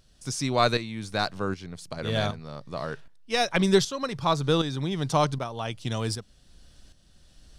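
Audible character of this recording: tremolo saw up 1.3 Hz, depth 65%

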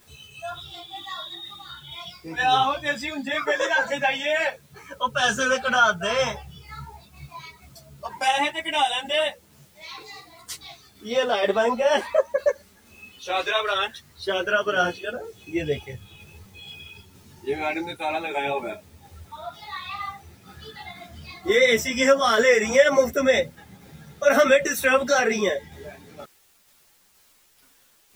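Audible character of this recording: a quantiser's noise floor 10-bit, dither triangular; tremolo saw down 2.1 Hz, depth 30%; a shimmering, thickened sound

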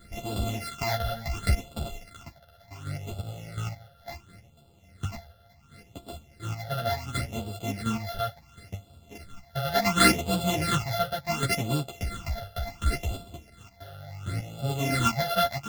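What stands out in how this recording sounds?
a buzz of ramps at a fixed pitch in blocks of 64 samples; phasing stages 8, 0.7 Hz, lowest notch 300–1900 Hz; chopped level 1.4 Hz, depth 60%, duty 15%; a shimmering, thickened sound

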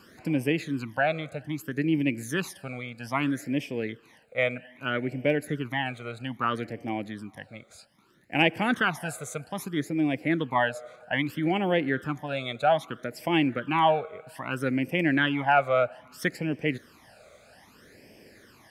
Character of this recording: phasing stages 12, 0.62 Hz, lowest notch 290–1300 Hz

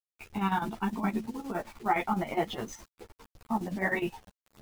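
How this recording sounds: a quantiser's noise floor 8-bit, dither none; chopped level 9.7 Hz, depth 65%, duty 60%; a shimmering, thickened sound

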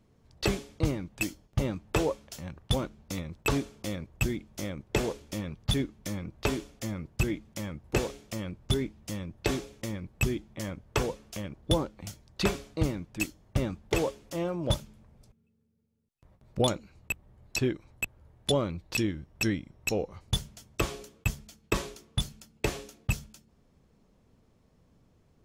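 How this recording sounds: noise floor -66 dBFS; spectral tilt -5.0 dB/octave

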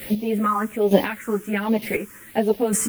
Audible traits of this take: a quantiser's noise floor 8-bit, dither triangular; phasing stages 4, 1.3 Hz, lowest notch 660–1400 Hz; chopped level 1.1 Hz, depth 65%, duty 15%; a shimmering, thickened sound

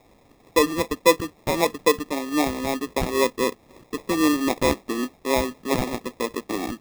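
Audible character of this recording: a quantiser's noise floor 10-bit, dither triangular; phasing stages 12, 3.8 Hz, lowest notch 550–1200 Hz; aliases and images of a low sample rate 1.5 kHz, jitter 0%

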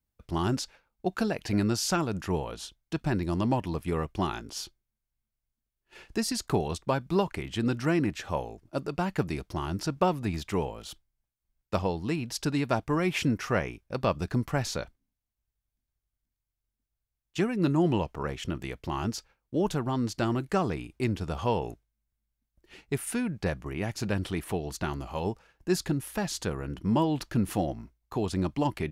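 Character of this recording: noise floor -86 dBFS; spectral tilt -5.5 dB/octave

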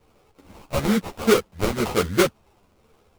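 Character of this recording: phasing stages 2, 1.1 Hz, lowest notch 250–3900 Hz; aliases and images of a low sample rate 1.8 kHz, jitter 20%; a shimmering, thickened sound

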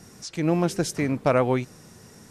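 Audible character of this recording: noise floor -50 dBFS; spectral tilt -6.0 dB/octave

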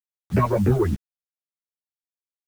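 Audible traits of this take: phasing stages 6, 3.4 Hz, lowest notch 200–1000 Hz; a quantiser's noise floor 8-bit, dither none; a shimmering, thickened sound

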